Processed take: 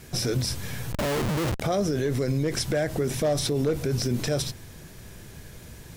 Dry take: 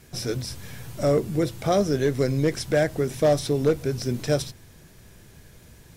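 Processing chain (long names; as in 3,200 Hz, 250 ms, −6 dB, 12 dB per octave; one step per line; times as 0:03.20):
brickwall limiter −22.5 dBFS, peak gain reduction 11 dB
0:00.92–0:01.61: comparator with hysteresis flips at −36.5 dBFS
level +5.5 dB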